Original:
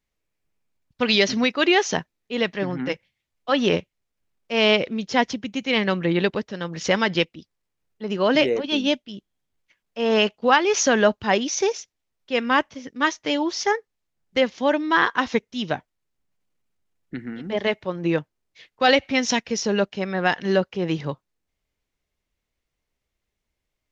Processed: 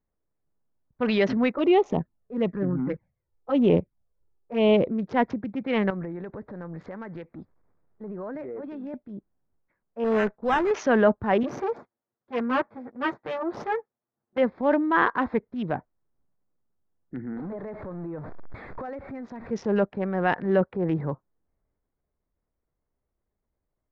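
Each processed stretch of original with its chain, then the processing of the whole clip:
1.55–4.90 s: touch-sensitive flanger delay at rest 2.5 ms, full sweep at -18 dBFS + bass shelf 470 Hz +4 dB + tape noise reduction on one side only decoder only
5.90–8.94 s: companding laws mixed up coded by mu + dynamic bell 1.8 kHz, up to +4 dB, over -35 dBFS, Q 1.3 + compression, threshold -32 dBFS
10.04–10.71 s: valve stage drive 10 dB, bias 0.5 + sample-rate reducer 4.5 kHz
11.43–14.38 s: comb filter that takes the minimum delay 8.5 ms + high-pass 160 Hz
17.37–19.51 s: jump at every zero crossing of -26.5 dBFS + compression 5:1, threshold -33 dBFS
whole clip: local Wiener filter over 15 samples; low-pass 1.6 kHz 12 dB/octave; transient shaper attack -4 dB, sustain +4 dB

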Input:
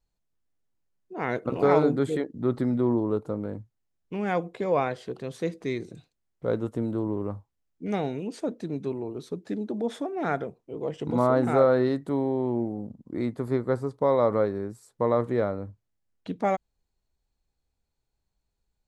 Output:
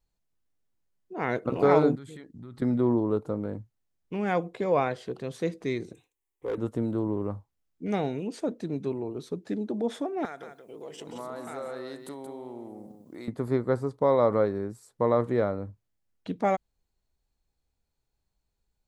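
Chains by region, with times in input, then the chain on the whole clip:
1.95–2.62 s: peaking EQ 530 Hz -14.5 dB 2.2 oct + compression, threshold -40 dBFS
5.93–6.58 s: tone controls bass -8 dB, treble +5 dB + static phaser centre 940 Hz, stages 8 + overload inside the chain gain 25.5 dB
10.25–13.28 s: RIAA curve recording + compression 2.5:1, threshold -41 dBFS + delay 177 ms -7.5 dB
whole clip: none

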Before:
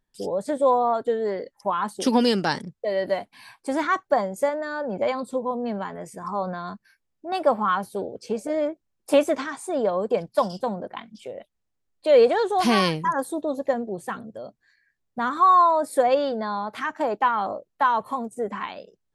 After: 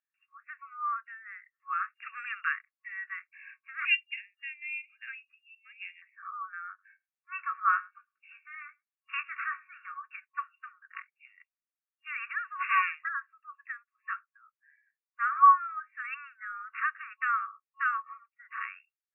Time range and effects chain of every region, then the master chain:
3.85–6.02 s: distance through air 420 m + frequency inversion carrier 3.9 kHz
6.68–10.04 s: doubling 20 ms -8 dB + delay 106 ms -23.5 dB
whole clip: FFT band-pass 1.1–2.8 kHz; spectral noise reduction 9 dB

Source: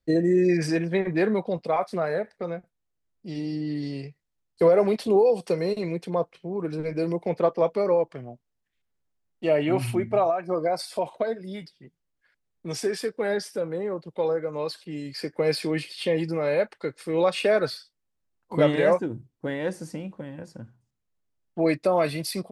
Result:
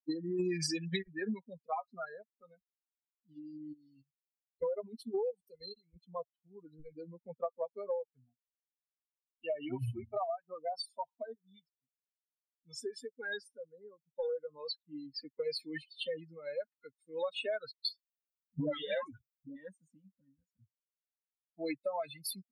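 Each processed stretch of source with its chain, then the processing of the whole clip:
0.39–1.03 s: peaking EQ 7.3 kHz +14 dB 2.7 oct + comb 5.8 ms, depth 95%
3.73–5.96 s: treble shelf 6 kHz +9 dB + level held to a coarse grid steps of 9 dB
14.17–15.44 s: waveshaping leveller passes 1 + distance through air 69 m
17.71–19.56 s: treble shelf 2.6 kHz +8.5 dB + phase dispersion highs, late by 142 ms, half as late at 690 Hz
whole clip: expander on every frequency bin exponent 3; peaking EQ 4 kHz +6 dB 0.65 oct; compression 6:1, threshold -34 dBFS; trim +1 dB

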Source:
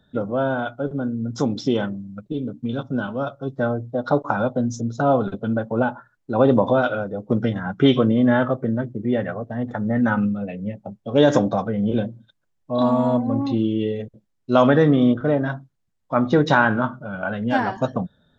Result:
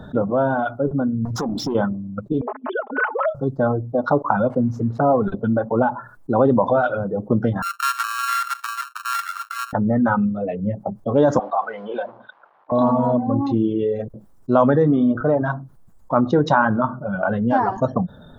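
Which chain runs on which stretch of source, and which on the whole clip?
1.25–1.75 s: compression 16:1, threshold -30 dBFS + waveshaping leveller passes 2
2.41–3.35 s: formants replaced by sine waves + high-pass 470 Hz 24 dB/octave + comb 4.7 ms, depth 86%
4.50–5.27 s: zero-crossing glitches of -24 dBFS + low-pass 1.5 kHz
7.62–9.73 s: sorted samples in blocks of 32 samples + steep high-pass 1.3 kHz 48 dB/octave + expander -40 dBFS
11.39–12.72 s: companding laws mixed up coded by mu + Chebyshev band-pass 780–3500 Hz + level-controlled noise filter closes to 1.7 kHz, open at -24 dBFS
whole clip: reverb removal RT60 1.3 s; resonant high shelf 1.6 kHz -11 dB, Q 1.5; level flattener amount 50%; trim -1.5 dB

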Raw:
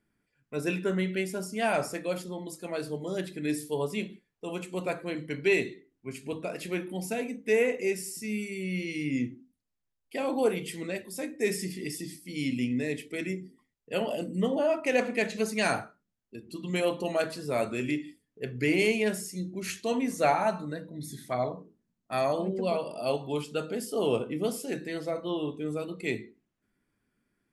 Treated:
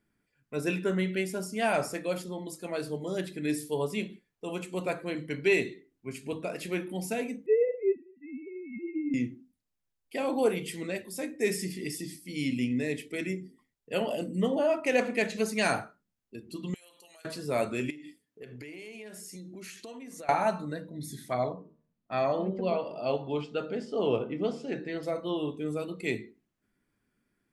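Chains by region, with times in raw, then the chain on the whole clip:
7.46–9.14 s: formants replaced by sine waves + Chebyshev low-pass 1.1 kHz
16.74–17.25 s: differentiator + compression 16:1, threshold -51 dBFS
17.90–20.29 s: high-pass 210 Hz 6 dB/octave + compression 16:1, threshold -40 dBFS
21.53–25.03 s: Gaussian low-pass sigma 1.8 samples + de-hum 76.68 Hz, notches 27
whole clip: none

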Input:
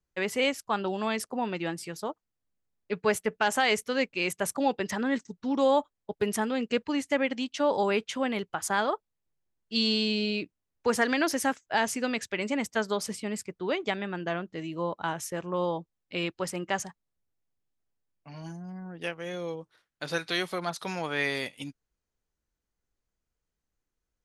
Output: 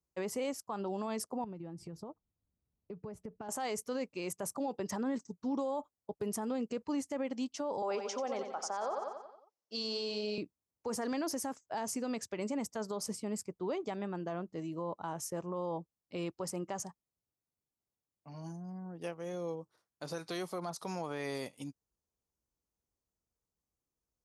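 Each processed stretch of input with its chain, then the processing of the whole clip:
1.44–3.49 s: RIAA curve playback + compression 10:1, threshold -37 dBFS
7.82–10.38 s: cabinet simulation 380–6900 Hz, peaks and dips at 550 Hz +7 dB, 780 Hz +5 dB, 1.3 kHz +5 dB, 5.5 kHz +8 dB + feedback delay 90 ms, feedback 52%, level -9.5 dB
whole clip: high-pass 54 Hz; high-order bell 2.4 kHz -10.5 dB; peak limiter -24.5 dBFS; trim -3.5 dB

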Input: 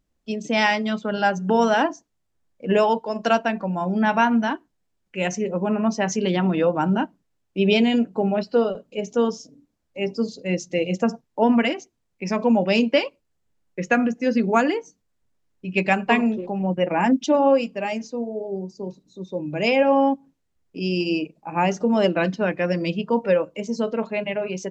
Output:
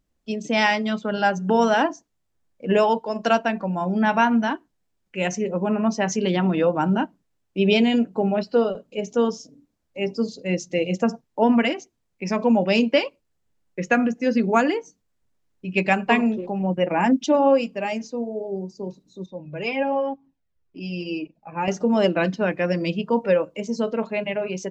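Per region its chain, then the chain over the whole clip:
19.26–21.68 s: distance through air 110 m + Shepard-style flanger falling 2 Hz
whole clip: none

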